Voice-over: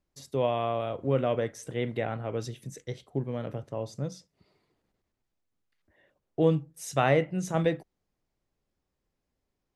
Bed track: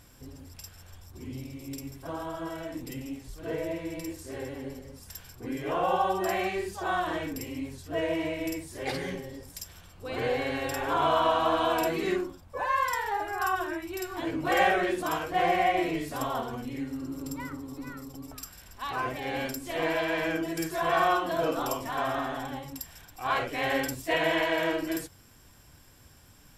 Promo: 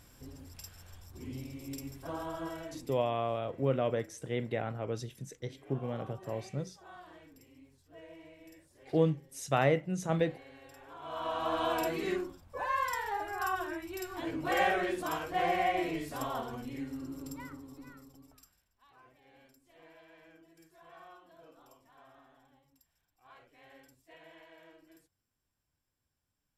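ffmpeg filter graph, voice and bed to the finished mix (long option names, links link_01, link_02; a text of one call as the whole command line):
ffmpeg -i stem1.wav -i stem2.wav -filter_complex "[0:a]adelay=2550,volume=-3.5dB[link_01];[1:a]volume=14.5dB,afade=type=out:start_time=2.45:duration=0.67:silence=0.105925,afade=type=in:start_time=11.02:duration=0.64:silence=0.133352,afade=type=out:start_time=16.98:duration=1.7:silence=0.0595662[link_02];[link_01][link_02]amix=inputs=2:normalize=0" out.wav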